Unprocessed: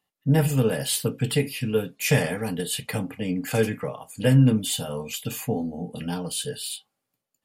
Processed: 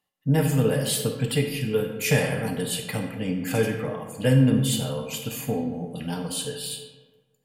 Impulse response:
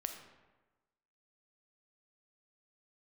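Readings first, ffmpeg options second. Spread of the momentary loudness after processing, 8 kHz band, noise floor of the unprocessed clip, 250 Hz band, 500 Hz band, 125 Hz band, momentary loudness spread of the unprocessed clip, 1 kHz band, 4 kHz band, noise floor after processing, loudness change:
11 LU, -0.5 dB, -83 dBFS, 0.0 dB, +0.5 dB, -0.5 dB, 11 LU, 0.0 dB, 0.0 dB, -70 dBFS, 0.0 dB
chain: -filter_complex "[1:a]atrim=start_sample=2205,asetrate=37044,aresample=44100[a];[0:a][a]afir=irnorm=-1:irlink=0"

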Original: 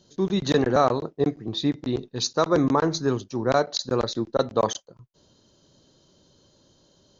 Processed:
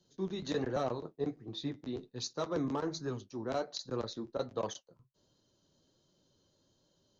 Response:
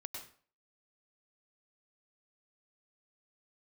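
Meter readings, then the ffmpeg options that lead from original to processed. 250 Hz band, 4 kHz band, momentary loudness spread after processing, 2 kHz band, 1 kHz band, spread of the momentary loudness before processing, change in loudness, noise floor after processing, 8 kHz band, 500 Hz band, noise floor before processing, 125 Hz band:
-13.0 dB, -13.0 dB, 6 LU, -14.5 dB, -15.5 dB, 6 LU, -13.5 dB, -74 dBFS, n/a, -13.0 dB, -62 dBFS, -13.0 dB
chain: -filter_complex "[0:a]flanger=delay=5.5:depth=7.6:regen=-44:speed=1.3:shape=triangular,acrossover=split=280|770|2400[a][b][c][d];[c]asoftclip=type=tanh:threshold=-30dB[e];[a][b][e][d]amix=inputs=4:normalize=0,volume=-9dB"

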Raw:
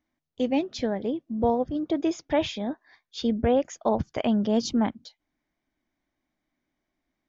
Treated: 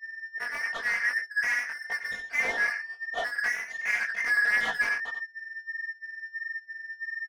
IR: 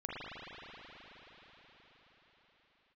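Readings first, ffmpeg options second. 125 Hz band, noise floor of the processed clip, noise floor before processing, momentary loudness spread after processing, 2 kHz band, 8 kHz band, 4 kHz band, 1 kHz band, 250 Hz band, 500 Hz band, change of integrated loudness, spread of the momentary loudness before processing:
under -20 dB, -52 dBFS, -83 dBFS, 12 LU, +20.0 dB, n/a, -3.5 dB, -7.0 dB, -30.0 dB, -17.0 dB, -2.0 dB, 7 LU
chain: -filter_complex "[0:a]afftfilt=real='real(if(lt(b,272),68*(eq(floor(b/68),0)*2+eq(floor(b/68),1)*0+eq(floor(b/68),2)*3+eq(floor(b/68),3)*1)+mod(b,68),b),0)':imag='imag(if(lt(b,272),68*(eq(floor(b/68),0)*2+eq(floor(b/68),1)*0+eq(floor(b/68),2)*3+eq(floor(b/68),3)*1)+mod(b,68),b),0)':win_size=2048:overlap=0.75,acrossover=split=3900[a][b];[b]acompressor=threshold=-45dB:ratio=4:attack=1:release=60[c];[a][c]amix=inputs=2:normalize=0,bass=f=250:g=-12,treble=f=4k:g=-1,asplit=2[d][e];[e]aecho=0:1:90:0.316[f];[d][f]amix=inputs=2:normalize=0,aeval=exprs='val(0)+0.0141*sin(2*PI*1800*n/s)':c=same,asplit=2[g][h];[h]highpass=f=720:p=1,volume=28dB,asoftclip=type=tanh:threshold=-11dB[i];[g][i]amix=inputs=2:normalize=0,lowpass=f=1.7k:p=1,volume=-6dB,flanger=delay=18:depth=2.8:speed=1.5,aecho=1:1:4.3:0.65,agate=range=-33dB:threshold=-20dB:ratio=3:detection=peak,equalizer=f=670:w=1.6:g=6,volume=-5.5dB"

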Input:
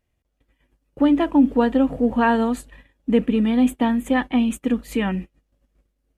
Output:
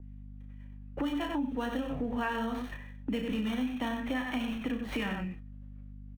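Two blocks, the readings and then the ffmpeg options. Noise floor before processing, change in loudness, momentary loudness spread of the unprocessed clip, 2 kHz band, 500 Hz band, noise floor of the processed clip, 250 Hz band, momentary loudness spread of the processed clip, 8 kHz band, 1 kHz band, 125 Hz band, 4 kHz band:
-74 dBFS, -14.0 dB, 8 LU, -8.5 dB, -14.5 dB, -46 dBFS, -14.5 dB, 17 LU, under -10 dB, -12.5 dB, -8.5 dB, -5.5 dB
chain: -filter_complex "[0:a]asplit=2[a][b];[b]adelay=28,volume=-8dB[c];[a][c]amix=inputs=2:normalize=0,aecho=1:1:34.99|93.29:0.398|0.447,acrossover=split=160|3000[d][e][f];[e]acompressor=threshold=-36dB:ratio=2.5[g];[d][g][f]amix=inputs=3:normalize=0,aresample=11025,aresample=44100,agate=range=-9dB:threshold=-44dB:ratio=16:detection=peak,aeval=exprs='val(0)+0.00562*(sin(2*PI*50*n/s)+sin(2*PI*2*50*n/s)/2+sin(2*PI*3*50*n/s)/3+sin(2*PI*4*50*n/s)/4+sin(2*PI*5*50*n/s)/5)':c=same,acrossover=split=260|1100|2900[h][i][j][k];[k]acrusher=samples=18:mix=1:aa=0.000001[l];[h][i][j][l]amix=inputs=4:normalize=0,tiltshelf=f=690:g=-6,acompressor=threshold=-38dB:ratio=3,adynamicequalizer=threshold=0.002:dfrequency=2600:dqfactor=0.7:tfrequency=2600:tqfactor=0.7:attack=5:release=100:ratio=0.375:range=2.5:mode=cutabove:tftype=highshelf,volume=6dB"

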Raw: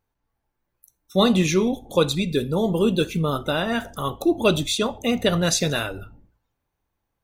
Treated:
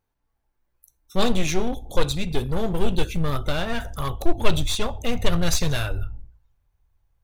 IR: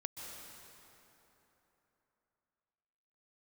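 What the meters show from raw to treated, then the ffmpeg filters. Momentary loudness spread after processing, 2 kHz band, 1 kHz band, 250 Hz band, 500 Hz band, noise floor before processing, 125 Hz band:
7 LU, -3.0 dB, -2.0 dB, -5.5 dB, -5.5 dB, -79 dBFS, -0.5 dB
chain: -af "aeval=exprs='clip(val(0),-1,0.0596)':c=same,asubboost=boost=9.5:cutoff=80,volume=-1dB"

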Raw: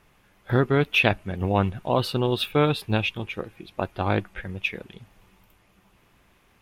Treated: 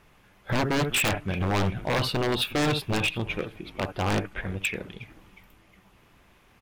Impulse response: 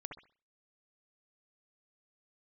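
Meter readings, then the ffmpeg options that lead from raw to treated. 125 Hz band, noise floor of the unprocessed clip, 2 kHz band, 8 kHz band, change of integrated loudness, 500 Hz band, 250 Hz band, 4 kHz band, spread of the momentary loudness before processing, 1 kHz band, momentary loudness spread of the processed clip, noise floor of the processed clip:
-3.0 dB, -61 dBFS, -1.5 dB, +12.5 dB, -2.5 dB, -4.5 dB, -2.0 dB, +0.5 dB, 13 LU, -2.5 dB, 10 LU, -59 dBFS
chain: -filter_complex "[0:a]asplit=4[a][b][c][d];[b]adelay=362,afreqshift=-140,volume=-21.5dB[e];[c]adelay=724,afreqshift=-280,volume=-29.9dB[f];[d]adelay=1086,afreqshift=-420,volume=-38.3dB[g];[a][e][f][g]amix=inputs=4:normalize=0,asplit=2[h][i];[1:a]atrim=start_sample=2205,atrim=end_sample=3528,lowpass=8.3k[j];[i][j]afir=irnorm=-1:irlink=0,volume=-6dB[k];[h][k]amix=inputs=2:normalize=0,aeval=exprs='0.119*(abs(mod(val(0)/0.119+3,4)-2)-1)':c=same"

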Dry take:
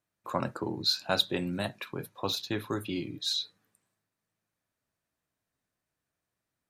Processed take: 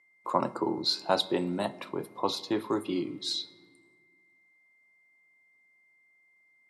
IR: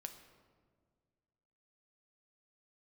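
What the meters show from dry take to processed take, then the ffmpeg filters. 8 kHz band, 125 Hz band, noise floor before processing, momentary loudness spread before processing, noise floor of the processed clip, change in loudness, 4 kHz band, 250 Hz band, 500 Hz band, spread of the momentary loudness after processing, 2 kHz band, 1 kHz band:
-2.5 dB, -4.0 dB, under -85 dBFS, 9 LU, -66 dBFS, +1.0 dB, -2.0 dB, +3.0 dB, +4.0 dB, 7 LU, -3.5 dB, +5.5 dB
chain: -filter_complex "[0:a]aeval=exprs='val(0)+0.000891*sin(2*PI*2100*n/s)':c=same,highpass=210,equalizer=f=350:t=q:w=4:g=3,equalizer=f=940:t=q:w=4:g=6,equalizer=f=1.6k:t=q:w=4:g=-9,equalizer=f=2.5k:t=q:w=4:g=-8,equalizer=f=3.7k:t=q:w=4:g=-6,equalizer=f=6.4k:t=q:w=4:g=-8,lowpass=f=9.8k:w=0.5412,lowpass=f=9.8k:w=1.3066,asplit=2[a][b];[1:a]atrim=start_sample=2205[c];[b][c]afir=irnorm=-1:irlink=0,volume=-2dB[d];[a][d]amix=inputs=2:normalize=0"

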